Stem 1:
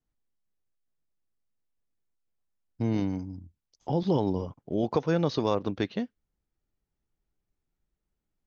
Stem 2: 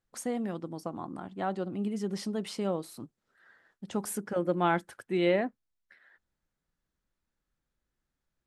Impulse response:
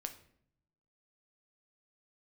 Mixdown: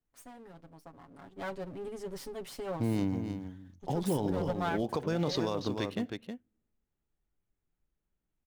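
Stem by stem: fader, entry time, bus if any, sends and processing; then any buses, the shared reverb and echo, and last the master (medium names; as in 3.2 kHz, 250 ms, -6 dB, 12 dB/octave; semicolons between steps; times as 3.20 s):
-4.5 dB, 0.00 s, send -7.5 dB, echo send -6.5 dB, local Wiener filter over 9 samples; treble shelf 4 kHz +10 dB; short-mantissa float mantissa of 6-bit
1.07 s -15 dB -> 1.34 s -5.5 dB -> 4.64 s -5.5 dB -> 5.14 s -16 dB, 0.00 s, no send, no echo send, comb filter that takes the minimum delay 7.2 ms; treble shelf 10 kHz +7 dB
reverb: on, RT60 0.65 s, pre-delay 7 ms
echo: delay 316 ms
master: peak limiter -21 dBFS, peak gain reduction 8 dB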